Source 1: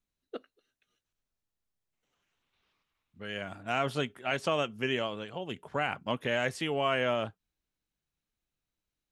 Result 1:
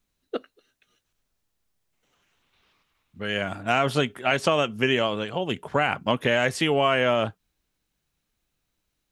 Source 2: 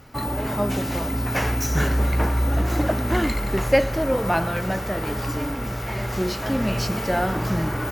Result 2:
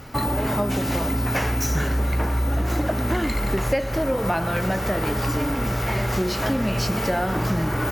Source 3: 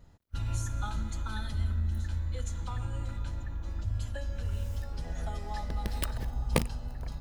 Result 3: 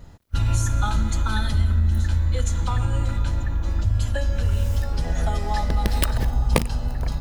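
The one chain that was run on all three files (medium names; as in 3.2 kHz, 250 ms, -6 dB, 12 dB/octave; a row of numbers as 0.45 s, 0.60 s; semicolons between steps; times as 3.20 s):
compression 6:1, threshold -27 dBFS; normalise loudness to -24 LUFS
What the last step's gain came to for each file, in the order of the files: +10.5 dB, +7.0 dB, +12.5 dB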